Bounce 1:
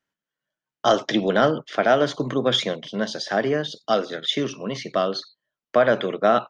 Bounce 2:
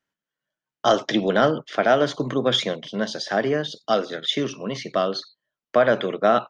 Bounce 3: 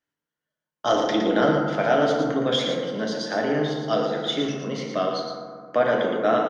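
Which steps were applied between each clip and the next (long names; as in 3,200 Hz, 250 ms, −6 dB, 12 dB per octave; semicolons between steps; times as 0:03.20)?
no processing that can be heard
single-tap delay 114 ms −6 dB; convolution reverb RT60 2.0 s, pre-delay 3 ms, DRR 0 dB; level −5 dB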